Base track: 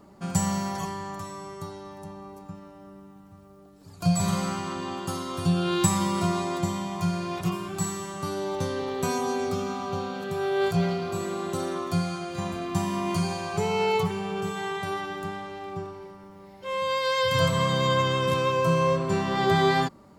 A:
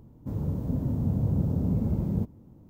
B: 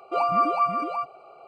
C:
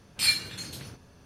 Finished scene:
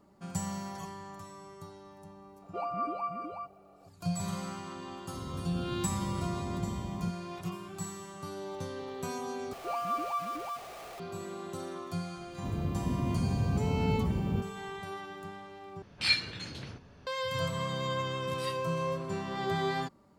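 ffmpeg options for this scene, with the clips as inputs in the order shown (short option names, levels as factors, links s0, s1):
-filter_complex "[2:a]asplit=2[s0][s1];[1:a]asplit=2[s2][s3];[3:a]asplit=2[s4][s5];[0:a]volume=0.316[s6];[s0]tiltshelf=f=910:g=3.5[s7];[s1]aeval=exprs='val(0)+0.5*0.0398*sgn(val(0))':c=same[s8];[s4]lowpass=4000[s9];[s5]aeval=exprs='val(0)*sin(2*PI*470*n/s)':c=same[s10];[s6]asplit=3[s11][s12][s13];[s11]atrim=end=9.534[s14];[s8]atrim=end=1.47,asetpts=PTS-STARTPTS,volume=0.237[s15];[s12]atrim=start=10.996:end=15.824[s16];[s9]atrim=end=1.25[s17];[s13]atrim=start=17.066[s18];[s7]atrim=end=1.47,asetpts=PTS-STARTPTS,volume=0.251,afade=t=in:d=0.004:c=hsin,afade=t=out:st=1.466:d=0.004:c=hsin,adelay=2420[s19];[s2]atrim=end=2.69,asetpts=PTS-STARTPTS,volume=0.266,afade=t=in:d=0.004:c=hsin,afade=t=out:st=2.686:d=0.004:c=hsin,adelay=4860[s20];[s3]atrim=end=2.69,asetpts=PTS-STARTPTS,volume=0.631,afade=t=in:d=0.004:c=hsin,afade=t=out:st=2.686:d=0.004:c=hsin,adelay=12170[s21];[s10]atrim=end=1.25,asetpts=PTS-STARTPTS,volume=0.133,afade=t=in:d=0.004:c=hsin,afade=t=out:st=1.246:d=0.004:c=hsin,adelay=18190[s22];[s14][s15]acrossfade=d=0.004:c1=hsin:c2=hsin[s23];[s23][s16]acrossfade=d=0.004:c1=hsin:c2=hsin[s24];[s24][s17]acrossfade=d=0.004:c1=hsin:c2=hsin[s25];[s25][s18]acrossfade=d=0.004:c1=hsin:c2=hsin[s26];[s26][s19][s20][s21][s22]amix=inputs=5:normalize=0"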